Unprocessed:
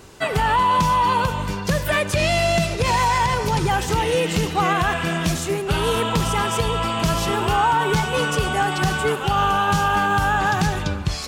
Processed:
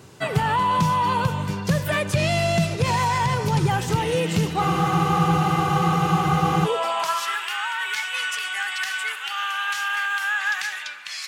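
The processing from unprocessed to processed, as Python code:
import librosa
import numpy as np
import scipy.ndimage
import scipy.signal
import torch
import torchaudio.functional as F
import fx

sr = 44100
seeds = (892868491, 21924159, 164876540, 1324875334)

y = fx.filter_sweep_highpass(x, sr, from_hz=120.0, to_hz=1900.0, start_s=5.97, end_s=7.43, q=2.5)
y = fx.spec_freeze(y, sr, seeds[0], at_s=4.61, hold_s=2.05)
y = F.gain(torch.from_numpy(y), -3.5).numpy()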